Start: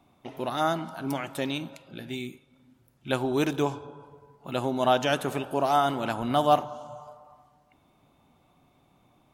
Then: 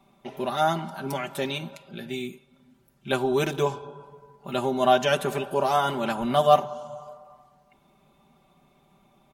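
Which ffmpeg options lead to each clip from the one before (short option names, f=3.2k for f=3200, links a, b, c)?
-af "aecho=1:1:5.1:0.85"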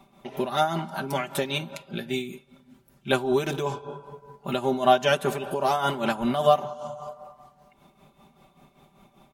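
-filter_complex "[0:a]asplit=2[a][b];[b]acompressor=threshold=-32dB:ratio=6,volume=2dB[c];[a][c]amix=inputs=2:normalize=0,tremolo=f=5.1:d=0.66"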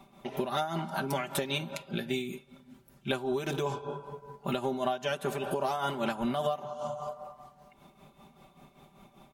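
-af "acompressor=threshold=-27dB:ratio=12"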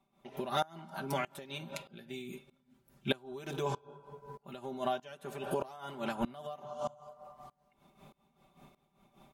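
-af "aeval=exprs='val(0)*pow(10,-22*if(lt(mod(-1.6*n/s,1),2*abs(-1.6)/1000),1-mod(-1.6*n/s,1)/(2*abs(-1.6)/1000),(mod(-1.6*n/s,1)-2*abs(-1.6)/1000)/(1-2*abs(-1.6)/1000))/20)':c=same,volume=1dB"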